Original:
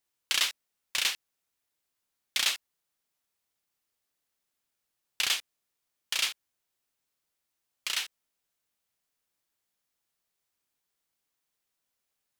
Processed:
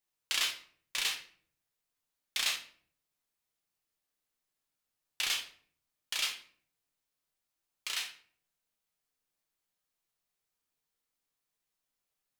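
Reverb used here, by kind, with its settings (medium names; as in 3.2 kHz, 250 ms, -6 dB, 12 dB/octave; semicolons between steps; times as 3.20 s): simulated room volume 60 m³, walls mixed, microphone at 0.51 m; trim -5.5 dB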